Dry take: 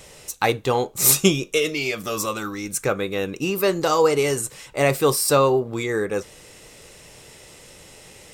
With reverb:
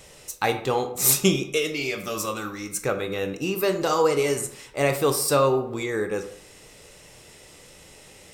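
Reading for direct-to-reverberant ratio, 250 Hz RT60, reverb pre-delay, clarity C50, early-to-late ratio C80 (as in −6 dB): 7.5 dB, 0.60 s, 18 ms, 10.5 dB, 14.0 dB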